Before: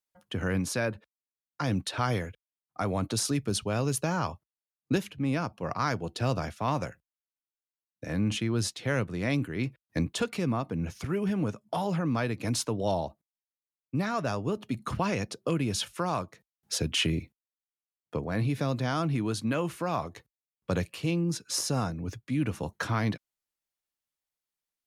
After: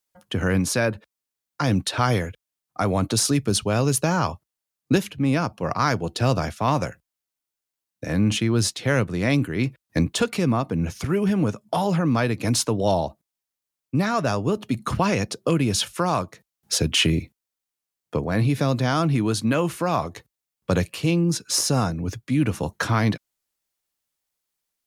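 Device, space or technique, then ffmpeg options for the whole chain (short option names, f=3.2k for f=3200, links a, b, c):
exciter from parts: -filter_complex "[0:a]asplit=2[a][b];[b]highpass=3.4k,asoftclip=type=tanh:threshold=-35dB,volume=-10dB[c];[a][c]amix=inputs=2:normalize=0,volume=7.5dB"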